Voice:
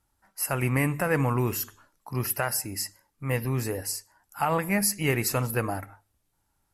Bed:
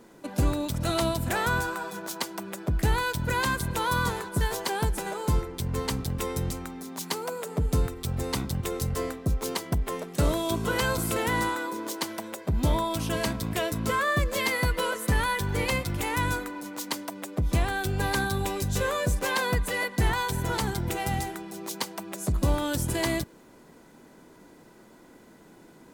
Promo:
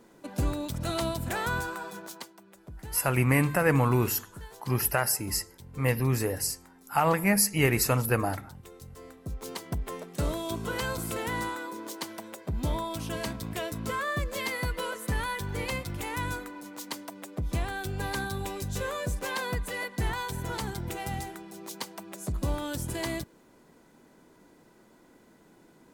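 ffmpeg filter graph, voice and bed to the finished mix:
ffmpeg -i stem1.wav -i stem2.wav -filter_complex "[0:a]adelay=2550,volume=1.5dB[link_01];[1:a]volume=8.5dB,afade=type=out:start_time=1.93:duration=0.41:silence=0.199526,afade=type=in:start_time=9:duration=0.73:silence=0.237137[link_02];[link_01][link_02]amix=inputs=2:normalize=0" out.wav

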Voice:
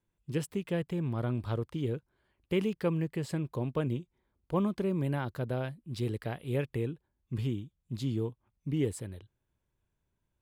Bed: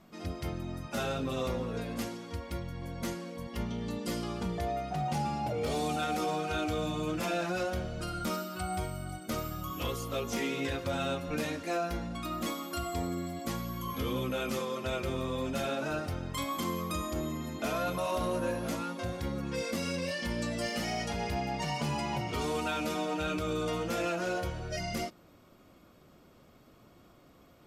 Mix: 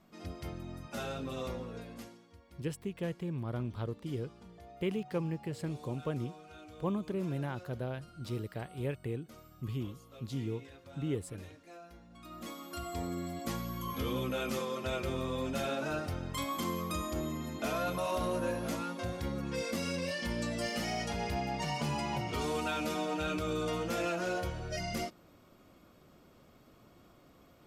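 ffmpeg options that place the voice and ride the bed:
ffmpeg -i stem1.wav -i stem2.wav -filter_complex "[0:a]adelay=2300,volume=-4.5dB[link_01];[1:a]volume=12.5dB,afade=type=out:start_time=1.48:duration=0.83:silence=0.199526,afade=type=in:start_time=12.08:duration=1.24:silence=0.125893[link_02];[link_01][link_02]amix=inputs=2:normalize=0" out.wav

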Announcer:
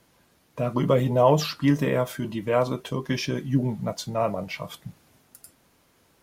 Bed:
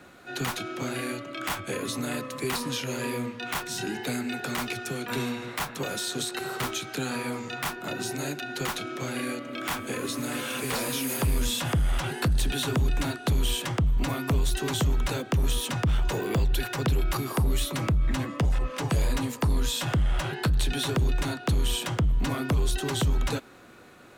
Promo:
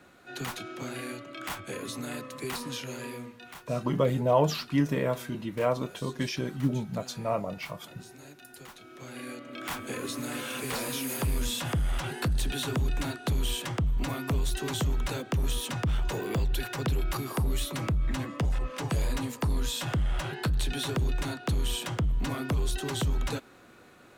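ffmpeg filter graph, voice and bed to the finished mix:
ffmpeg -i stem1.wav -i stem2.wav -filter_complex "[0:a]adelay=3100,volume=-4.5dB[link_01];[1:a]volume=8.5dB,afade=type=out:start_time=2.79:duration=0.83:silence=0.251189,afade=type=in:start_time=8.79:duration=1.08:silence=0.199526[link_02];[link_01][link_02]amix=inputs=2:normalize=0" out.wav

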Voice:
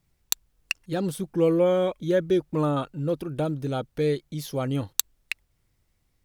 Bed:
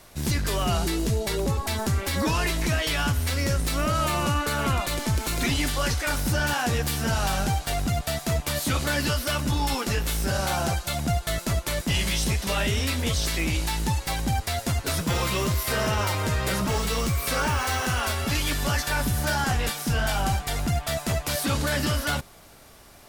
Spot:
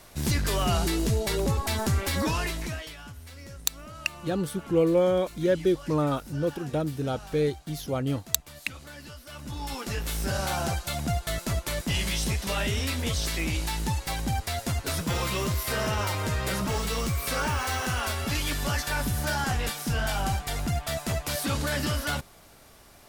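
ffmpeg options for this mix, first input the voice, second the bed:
ffmpeg -i stem1.wav -i stem2.wav -filter_complex "[0:a]adelay=3350,volume=-1dB[link_01];[1:a]volume=15.5dB,afade=type=out:start_time=2.06:duration=0.9:silence=0.11885,afade=type=in:start_time=9.27:duration=1:silence=0.158489[link_02];[link_01][link_02]amix=inputs=2:normalize=0" out.wav

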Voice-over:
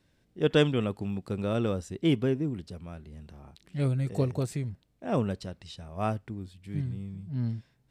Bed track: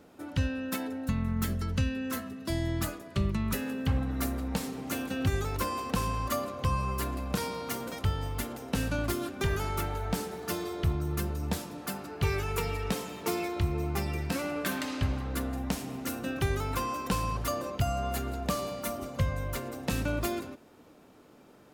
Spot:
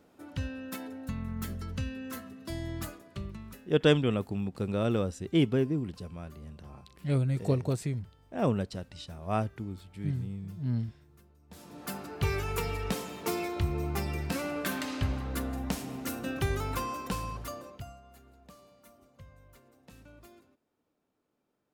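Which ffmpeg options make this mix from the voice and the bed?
ffmpeg -i stem1.wav -i stem2.wav -filter_complex "[0:a]adelay=3300,volume=0dB[link_01];[1:a]volume=21.5dB,afade=type=out:start_time=2.84:duration=0.89:silence=0.0749894,afade=type=in:start_time=11.49:duration=0.47:silence=0.0421697,afade=type=out:start_time=16.67:duration=1.34:silence=0.0749894[link_02];[link_01][link_02]amix=inputs=2:normalize=0" out.wav

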